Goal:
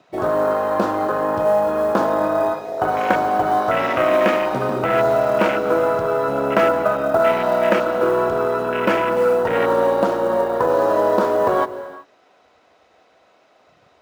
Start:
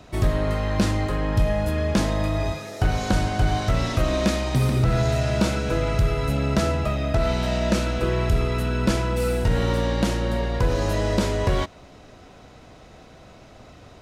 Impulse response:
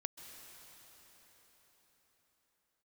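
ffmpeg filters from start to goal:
-filter_complex "[0:a]afwtdn=0.0316,highpass=500,aemphasis=mode=reproduction:type=50kf,acrusher=bits=8:mode=log:mix=0:aa=0.000001,asplit=2[a][b];[1:a]atrim=start_sample=2205,afade=t=out:st=0.44:d=0.01,atrim=end_sample=19845[c];[b][c]afir=irnorm=-1:irlink=0,volume=4.5dB[d];[a][d]amix=inputs=2:normalize=0,volume=5.5dB"

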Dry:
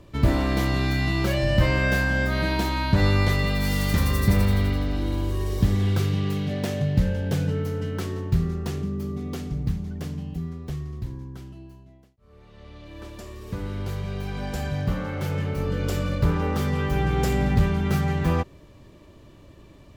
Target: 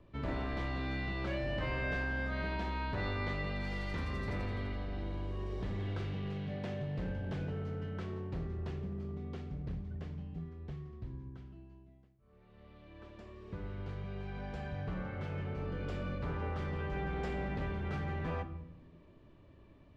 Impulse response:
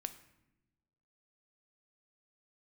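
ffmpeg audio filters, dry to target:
-filter_complex "[0:a]lowpass=2.9k[a];[1:a]atrim=start_sample=2205[b];[a][b]afir=irnorm=-1:irlink=0,acrossover=split=470|1100[c][d][e];[c]asoftclip=type=hard:threshold=-27dB[f];[f][d][e]amix=inputs=3:normalize=0,volume=-8.5dB"

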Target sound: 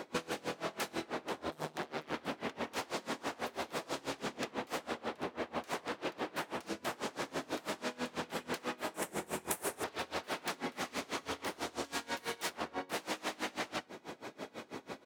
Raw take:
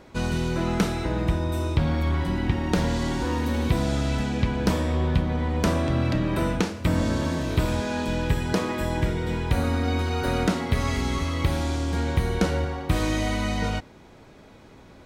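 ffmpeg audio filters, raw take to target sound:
-filter_complex "[0:a]asettb=1/sr,asplit=3[a][b][c];[a]atrim=end=11.844[d];[b]atrim=start=11.84:end=12.5,asetpts=PTS-STARTPTS,afade=t=in:d=0.004:c=qsin,afade=t=out:st=0.656:d=0.004:c=qsin,tiltshelf=f=750:g=-6[e];[c]atrim=start=12.496[f];[d][e]acrossfade=d=0.004:c1=hsin:c2=qsin[g];[g][f]acrossfade=d=0.004:c1=qsin:c2=hsin,aeval=exprs='0.0501*(abs(mod(val(0)/0.0501+3,4)-2)-1)':c=same,acontrast=66,asoftclip=type=tanh:threshold=-17.5dB,aecho=1:1:61|73:0.237|0.211,asettb=1/sr,asplit=3[h][i][j];[h]atrim=end=1.504[k];[i]atrim=start=1.5:end=2.14,asetpts=PTS-STARTPTS,afade=t=in:d=0.004:c=qsin,afade=t=out:st=0.636:d=0.004:c=qsin,aeval=exprs='val(0)*sin(2*PI*73*n/s)':c=same[l];[j]atrim=start=2.136[m];[k][l]acrossfade=d=0.004:c1=hsin:c2=qsin[n];[n][m]acrossfade=d=0.004:c1=qsin:c2=hsin,highpass=270,acompressor=threshold=-36dB:ratio=6,asettb=1/sr,asplit=3[o][p][q];[o]atrim=end=8.944[r];[p]atrim=start=8.94:end=9.84,asetpts=PTS-STARTPTS,afade=t=in:d=0.004:c=qsin,afade=t=out:st=0.896:d=0.004:c=qsin,highshelf=f=6.3k:t=q:w=1.5:g=13.5[s];[q]atrim=start=9.836[t];[r][s]acrossfade=d=0.004:c1=hsin:c2=qsin[u];[u][t]acrossfade=d=0.004:c1=qsin:c2=hsin,aeval=exprs='val(0)*pow(10,-25*(0.5-0.5*cos(2*PI*6.1*n/s))/20)':c=same,volume=4dB"

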